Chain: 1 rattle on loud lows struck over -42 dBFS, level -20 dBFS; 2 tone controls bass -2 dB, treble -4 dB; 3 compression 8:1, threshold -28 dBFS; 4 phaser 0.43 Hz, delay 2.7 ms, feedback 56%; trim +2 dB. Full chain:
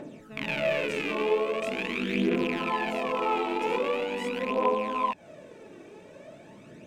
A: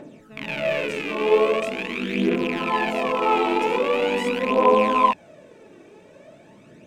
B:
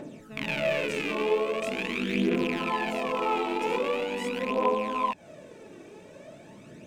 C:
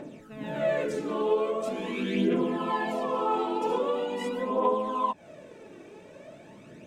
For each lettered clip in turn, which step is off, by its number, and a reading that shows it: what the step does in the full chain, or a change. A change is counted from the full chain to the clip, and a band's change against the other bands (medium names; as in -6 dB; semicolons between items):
3, mean gain reduction 4.0 dB; 2, 8 kHz band +3.0 dB; 1, 2 kHz band -7.5 dB